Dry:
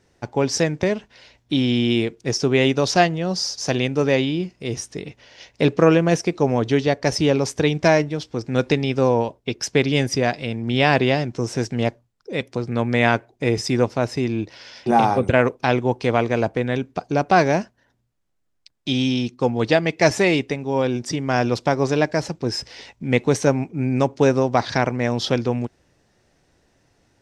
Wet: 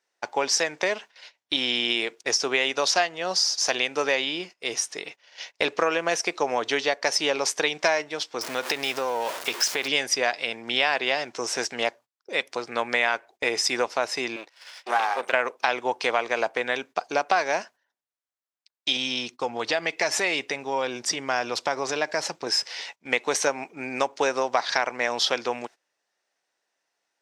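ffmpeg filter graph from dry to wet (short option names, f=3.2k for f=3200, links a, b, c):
-filter_complex "[0:a]asettb=1/sr,asplit=3[a][b][c];[a]atrim=end=8.414[d];[b]atrim=start=8.41:end=9.88,asetpts=PTS-STARTPTS,afade=t=in:d=0.004:c=qsin,afade=t=out:st=1.466:d=0.004:c=qsin,aeval=exprs='val(0)+0.5*0.0355*sgn(val(0))':c=same,acompressor=threshold=-19dB:ratio=6:attack=3.2:release=140:knee=1:detection=peak[e];[c]atrim=start=9.876[f];[d][e]acrossfade=d=0.004:c1=hsin:c2=qsin[g];[g][f]acrossfade=d=0.004:c1=qsin:c2=hsin,asettb=1/sr,asplit=3[h][i][j];[h]atrim=end=14.364[k];[i]atrim=start=14.36:end=15.33,asetpts=PTS-STARTPTS,afade=t=in:d=0.004:c=qsin,afade=t=out:st=0.966:d=0.004:c=qsin,aeval=exprs='if(lt(val(0),0),0.251*val(0),val(0))':c=same,highpass=f=500:p=1,highshelf=f=4k:g=-4[l];[j]atrim=start=15.326[m];[k][l]acrossfade=d=0.004:c1=hsin:c2=qsin[n];[n][m]acrossfade=d=0.004:c1=qsin:c2=hsin,asettb=1/sr,asplit=3[o][p][q];[o]atrim=end=18.964[r];[p]atrim=start=18.96:end=22.47,asetpts=PTS-STARTPTS,afade=t=in:d=0.004:c=qsin,afade=t=out:st=3.506:d=0.004:c=qsin,lowshelf=f=150:g=11.5,acompressor=threshold=-18dB:ratio=4:attack=3.2:release=140:knee=1:detection=peak[s];[q]atrim=start=22.466[t];[r][s]acrossfade=d=0.004:c1=hsin:c2=qsin[u];[u][t]acrossfade=d=0.004:c1=qsin:c2=hsin,highpass=780,agate=range=-17dB:threshold=-47dB:ratio=16:detection=peak,acompressor=threshold=-25dB:ratio=4,volume=5.5dB"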